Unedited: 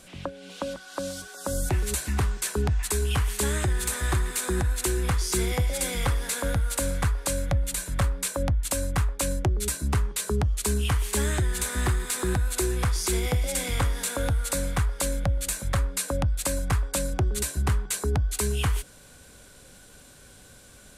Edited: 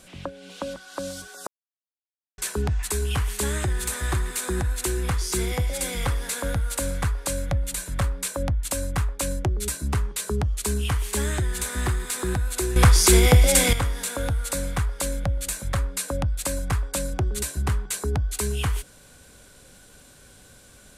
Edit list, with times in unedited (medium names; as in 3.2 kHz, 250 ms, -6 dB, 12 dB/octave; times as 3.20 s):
1.47–2.38 s: mute
12.76–13.73 s: gain +10.5 dB